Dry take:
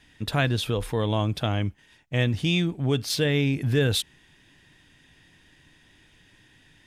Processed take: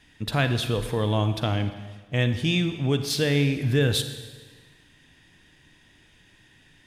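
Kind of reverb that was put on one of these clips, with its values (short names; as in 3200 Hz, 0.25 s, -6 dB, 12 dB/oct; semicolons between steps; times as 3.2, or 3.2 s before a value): Schroeder reverb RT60 1.4 s, DRR 9 dB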